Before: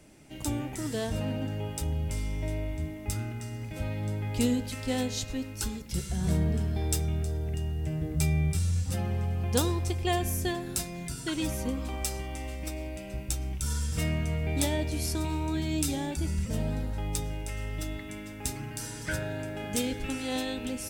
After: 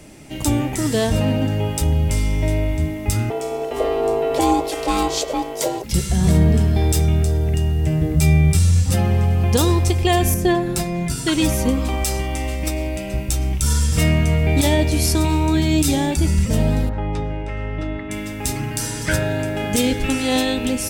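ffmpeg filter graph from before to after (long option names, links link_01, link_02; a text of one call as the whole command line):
ffmpeg -i in.wav -filter_complex "[0:a]asettb=1/sr,asplit=3[link_01][link_02][link_03];[link_01]atrim=end=3.304[link_04];[link_02]atrim=start=3.3:end=5.84,asetpts=PTS-STARTPTS,afade=type=in:duration=0.004:curve=qsin,afade=type=out:start_time=2.536:duration=0.004:curve=qsin,aeval=exprs='val(0)*sin(2*PI*560*n/s)':channel_layout=same,equalizer=frequency=400:width=7.6:gain=13[link_05];[link_03]atrim=start=5.836[link_06];[link_04][link_05]acrossfade=duration=0.004:curve1=hsin:curve2=qsin[link_07];[link_07][link_06]acrossfade=duration=0.004:curve1=qsin:curve2=hsin,asettb=1/sr,asplit=3[link_08][link_09][link_10];[link_08]atrim=end=10.344[link_11];[link_09]atrim=start=10.34:end=11.1,asetpts=PTS-STARTPTS,afade=type=in:duration=0.004:curve=qsin,afade=type=out:start_time=0.756:duration=0.004:curve=qsin,highshelf=frequency=2500:gain=-10,aecho=1:1:5.8:0.46,atrim=end_sample=33516[link_12];[link_10]atrim=start=11.096[link_13];[link_11][link_12]acrossfade=duration=0.004:curve1=hsin:curve2=qsin[link_14];[link_14][link_13]acrossfade=duration=0.004:curve1=qsin:curve2=hsin,asettb=1/sr,asplit=3[link_15][link_16][link_17];[link_15]atrim=end=16.894[link_18];[link_16]atrim=start=16.89:end=18.11,asetpts=PTS-STARTPTS,afade=type=in:duration=0.004:curve=qsin,afade=type=out:start_time=1.216:duration=0.004:curve=qsin,lowpass=1800,lowshelf=frequency=160:gain=-5.5[link_19];[link_17]atrim=start=18.106[link_20];[link_18][link_19]acrossfade=duration=0.004:curve1=hsin:curve2=qsin[link_21];[link_21][link_20]acrossfade=duration=0.004:curve1=qsin:curve2=hsin,bandreject=frequency=1500:width=16,alimiter=level_in=18dB:limit=-1dB:release=50:level=0:latency=1,volume=-5dB" out.wav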